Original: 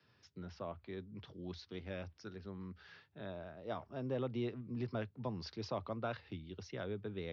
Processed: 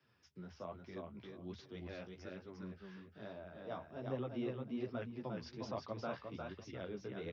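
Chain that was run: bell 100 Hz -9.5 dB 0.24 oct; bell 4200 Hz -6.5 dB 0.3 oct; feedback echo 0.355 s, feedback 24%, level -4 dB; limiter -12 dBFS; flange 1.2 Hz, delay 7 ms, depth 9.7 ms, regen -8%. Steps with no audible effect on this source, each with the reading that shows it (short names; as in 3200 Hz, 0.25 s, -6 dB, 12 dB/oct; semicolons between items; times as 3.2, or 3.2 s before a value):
limiter -12 dBFS: input peak -25.5 dBFS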